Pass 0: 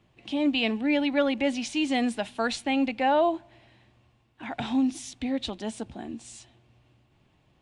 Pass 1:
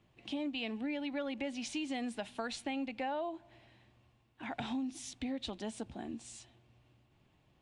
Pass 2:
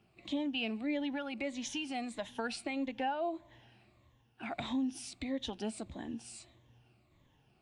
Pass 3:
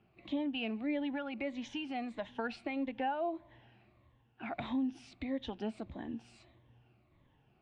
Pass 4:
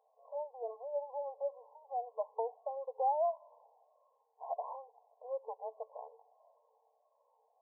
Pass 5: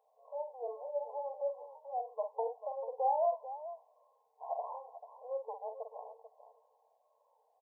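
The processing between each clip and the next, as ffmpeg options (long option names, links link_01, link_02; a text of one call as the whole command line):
ffmpeg -i in.wav -af "acompressor=threshold=-30dB:ratio=6,volume=-5dB" out.wav
ffmpeg -i in.wav -af "afftfilt=real='re*pow(10,10/40*sin(2*PI*(1.1*log(max(b,1)*sr/1024/100)/log(2)-(-1.6)*(pts-256)/sr)))':imag='im*pow(10,10/40*sin(2*PI*(1.1*log(max(b,1)*sr/1024/100)/log(2)-(-1.6)*(pts-256)/sr)))':win_size=1024:overlap=0.75" out.wav
ffmpeg -i in.wav -af "lowpass=2700" out.wav
ffmpeg -i in.wav -af "afftfilt=real='re*between(b*sr/4096,440,1100)':imag='im*between(b*sr/4096,440,1100)':win_size=4096:overlap=0.75,volume=4dB" out.wav
ffmpeg -i in.wav -af "aecho=1:1:48|441:0.473|0.237" out.wav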